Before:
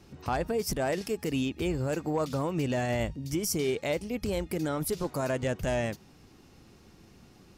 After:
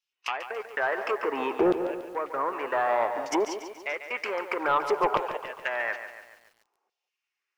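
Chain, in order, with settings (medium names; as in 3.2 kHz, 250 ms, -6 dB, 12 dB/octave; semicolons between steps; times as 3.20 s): saturation -24 dBFS, distortion -18 dB; fifteen-band graphic EQ 160 Hz -11 dB, 400 Hz +8 dB, 1 kHz +6 dB, 4 kHz -8 dB, 10 kHz -12 dB; low-pass that closes with the level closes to 1 kHz, closed at -25.5 dBFS; 1.59–2.53 s: tilt EQ -4 dB/octave; LFO high-pass saw down 0.58 Hz 710–3400 Hz; repeats whose band climbs or falls 194 ms, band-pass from 610 Hz, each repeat 1.4 oct, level -12 dB; sine folder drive 12 dB, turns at -13.5 dBFS; gate -33 dBFS, range -40 dB; compression 1.5:1, threshold -33 dBFS, peak gain reduction 6.5 dB; bit-crushed delay 142 ms, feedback 55%, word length 9-bit, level -10 dB; trim +2.5 dB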